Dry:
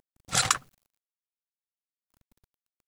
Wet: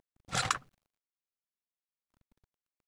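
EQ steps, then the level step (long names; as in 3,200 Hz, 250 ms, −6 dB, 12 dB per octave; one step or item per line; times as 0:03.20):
low-pass filter 3,000 Hz 6 dB per octave
−3.5 dB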